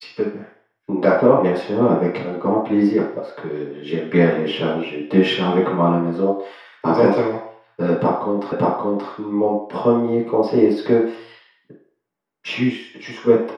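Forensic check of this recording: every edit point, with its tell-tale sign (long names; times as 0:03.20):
0:08.52: the same again, the last 0.58 s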